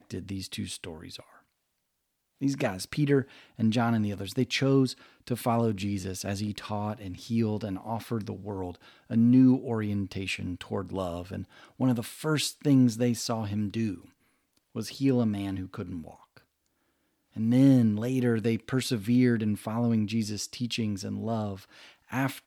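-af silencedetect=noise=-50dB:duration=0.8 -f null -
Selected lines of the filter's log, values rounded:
silence_start: 1.38
silence_end: 2.39 | silence_duration: 1.01
silence_start: 16.38
silence_end: 17.35 | silence_duration: 0.97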